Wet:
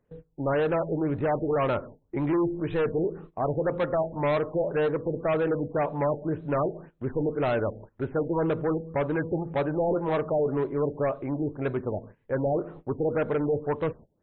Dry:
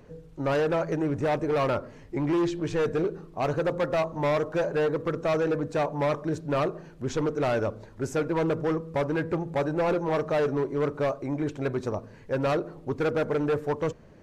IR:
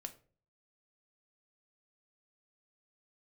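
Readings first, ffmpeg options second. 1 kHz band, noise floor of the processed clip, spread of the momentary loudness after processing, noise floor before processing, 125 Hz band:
−0.5 dB, −70 dBFS, 6 LU, −49 dBFS, 0.0 dB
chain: -af "agate=range=-21dB:threshold=-43dB:ratio=16:detection=peak,afftfilt=real='re*lt(b*sr/1024,860*pow(4200/860,0.5+0.5*sin(2*PI*1.9*pts/sr)))':imag='im*lt(b*sr/1024,860*pow(4200/860,0.5+0.5*sin(2*PI*1.9*pts/sr)))':win_size=1024:overlap=0.75"

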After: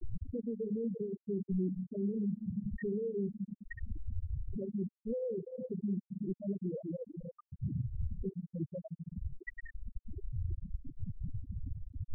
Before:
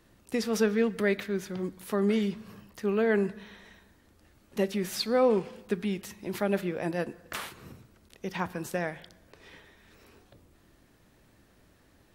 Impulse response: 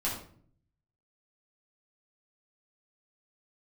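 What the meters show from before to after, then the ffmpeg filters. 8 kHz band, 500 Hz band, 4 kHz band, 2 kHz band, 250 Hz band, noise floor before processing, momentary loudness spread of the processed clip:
below −35 dB, −11.0 dB, below −40 dB, −17.5 dB, −5.5 dB, −62 dBFS, 10 LU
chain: -filter_complex "[0:a]aeval=exprs='val(0)+0.5*0.02*sgn(val(0))':channel_layout=same,acompressor=threshold=-34dB:ratio=5,asplit=2[link_01][link_02];[link_02]lowpass=frequency=7700:width=0.5412,lowpass=frequency=7700:width=1.3066[link_03];[1:a]atrim=start_sample=2205[link_04];[link_03][link_04]afir=irnorm=-1:irlink=0,volume=-13.5dB[link_05];[link_01][link_05]amix=inputs=2:normalize=0,alimiter=level_in=6dB:limit=-24dB:level=0:latency=1:release=15,volume=-6dB,afftfilt=real='re*gte(hypot(re,im),0.0891)':imag='im*gte(hypot(re,im),0.0891)':win_size=1024:overlap=0.75,equalizer=frequency=250:width_type=o:width=1:gain=-4,equalizer=frequency=500:width_type=o:width=1:gain=-4,equalizer=frequency=1000:width_type=o:width=1:gain=-4,volume=7dB"

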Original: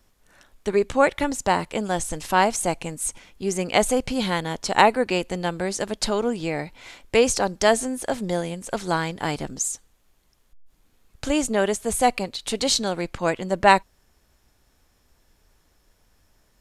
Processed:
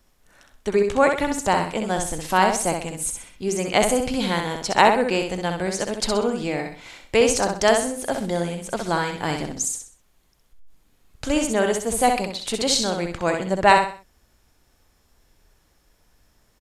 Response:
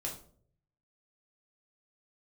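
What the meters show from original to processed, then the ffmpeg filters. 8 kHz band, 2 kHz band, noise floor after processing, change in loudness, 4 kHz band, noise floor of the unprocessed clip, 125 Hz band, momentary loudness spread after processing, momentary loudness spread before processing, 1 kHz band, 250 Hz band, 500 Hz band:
+1.5 dB, +1.5 dB, −63 dBFS, +1.5 dB, +1.5 dB, −64 dBFS, +1.0 dB, 10 LU, 10 LU, +1.5 dB, +1.0 dB, +1.5 dB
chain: -af "aecho=1:1:64|128|192|256:0.562|0.191|0.065|0.0221"

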